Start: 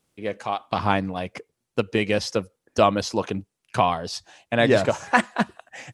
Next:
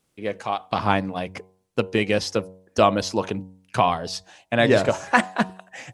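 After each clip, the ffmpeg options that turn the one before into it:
-af "bandreject=f=93.51:t=h:w=4,bandreject=f=187.02:t=h:w=4,bandreject=f=280.53:t=h:w=4,bandreject=f=374.04:t=h:w=4,bandreject=f=467.55:t=h:w=4,bandreject=f=561.06:t=h:w=4,bandreject=f=654.57:t=h:w=4,bandreject=f=748.08:t=h:w=4,bandreject=f=841.59:t=h:w=4,bandreject=f=935.1:t=h:w=4,bandreject=f=1.02861k:t=h:w=4,volume=1dB"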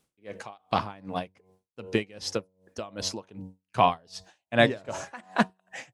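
-af "aeval=exprs='val(0)*pow(10,-28*(0.5-0.5*cos(2*PI*2.6*n/s))/20)':c=same"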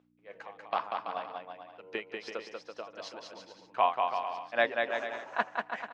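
-filter_complex "[0:a]aeval=exprs='val(0)+0.00794*(sin(2*PI*60*n/s)+sin(2*PI*2*60*n/s)/2+sin(2*PI*3*60*n/s)/3+sin(2*PI*4*60*n/s)/4+sin(2*PI*5*60*n/s)/5)':c=same,highpass=590,lowpass=2.6k,asplit=2[a][b];[b]aecho=0:1:190|332.5|439.4|519.5|579.6:0.631|0.398|0.251|0.158|0.1[c];[a][c]amix=inputs=2:normalize=0,volume=-3.5dB"

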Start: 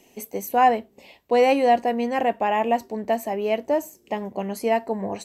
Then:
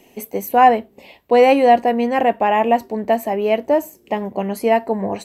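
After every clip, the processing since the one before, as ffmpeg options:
-af "equalizer=f=6.4k:t=o:w=1.2:g=-6.5,volume=6dB"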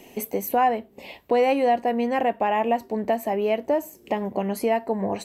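-af "acompressor=threshold=-30dB:ratio=2,volume=3dB"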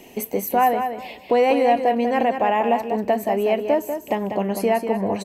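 -af "aecho=1:1:193|386|579:0.422|0.0886|0.0186,volume=2.5dB"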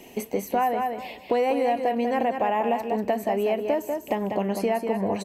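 -filter_complex "[0:a]acrossover=split=1600|7400[a][b][c];[a]acompressor=threshold=-19dB:ratio=4[d];[b]acompressor=threshold=-37dB:ratio=4[e];[c]acompressor=threshold=-44dB:ratio=4[f];[d][e][f]amix=inputs=3:normalize=0,volume=-1.5dB"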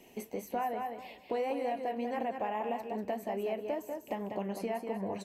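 -af "flanger=delay=3.9:depth=7.1:regen=-64:speed=1.8:shape=triangular,volume=-6.5dB"

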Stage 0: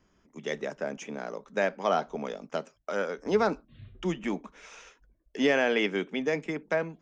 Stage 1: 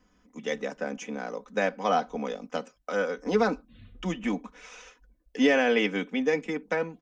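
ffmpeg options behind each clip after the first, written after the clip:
-af "aecho=1:1:4:0.73"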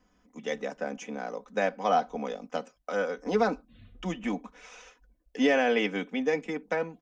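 -af "equalizer=f=710:t=o:w=0.6:g=4,volume=-2.5dB"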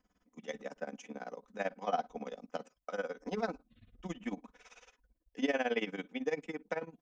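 -af "tremolo=f=18:d=0.88,volume=-5dB"

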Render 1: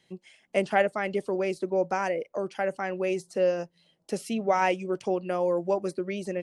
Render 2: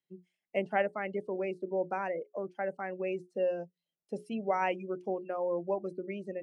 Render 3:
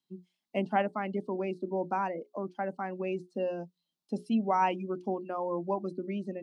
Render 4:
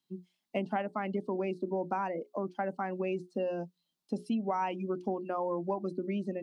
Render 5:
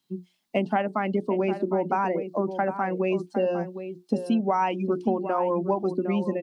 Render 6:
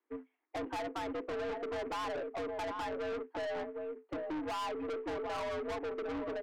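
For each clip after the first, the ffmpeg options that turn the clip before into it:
-af "bandreject=f=60:t=h:w=6,bandreject=f=120:t=h:w=6,bandreject=f=180:t=h:w=6,bandreject=f=240:t=h:w=6,bandreject=f=300:t=h:w=6,bandreject=f=360:t=h:w=6,bandreject=f=420:t=h:w=6,afftdn=nr=21:nf=-35,volume=-6dB"
-af "equalizer=f=250:t=o:w=1:g=11,equalizer=f=500:t=o:w=1:g=-7,equalizer=f=1k:t=o:w=1:g=9,equalizer=f=2k:t=o:w=1:g=-8,equalizer=f=4k:t=o:w=1:g=11"
-af "acompressor=threshold=-31dB:ratio=6,volume=2.5dB"
-filter_complex "[0:a]asplit=2[a][b];[b]adelay=758,volume=-10dB,highshelf=f=4k:g=-17.1[c];[a][c]amix=inputs=2:normalize=0,volume=8dB"
-af "acrusher=bits=4:mode=log:mix=0:aa=0.000001,highpass=f=210:t=q:w=0.5412,highpass=f=210:t=q:w=1.307,lowpass=f=2.1k:t=q:w=0.5176,lowpass=f=2.1k:t=q:w=0.7071,lowpass=f=2.1k:t=q:w=1.932,afreqshift=81,aeval=exprs='(tanh(44.7*val(0)+0.1)-tanh(0.1))/44.7':c=same,volume=-2.5dB"

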